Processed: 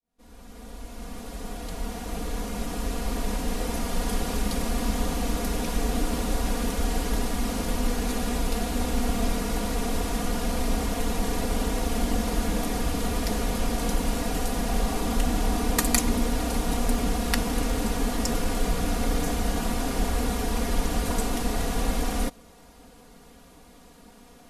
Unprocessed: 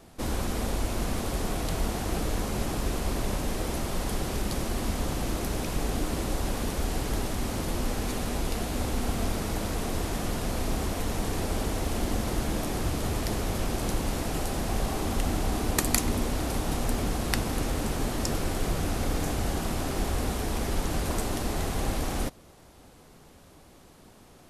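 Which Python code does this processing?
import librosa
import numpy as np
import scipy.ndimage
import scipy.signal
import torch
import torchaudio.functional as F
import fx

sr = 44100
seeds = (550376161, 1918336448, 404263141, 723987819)

y = fx.fade_in_head(x, sr, length_s=4.13)
y = y + 0.85 * np.pad(y, (int(4.2 * sr / 1000.0), 0))[:len(y)]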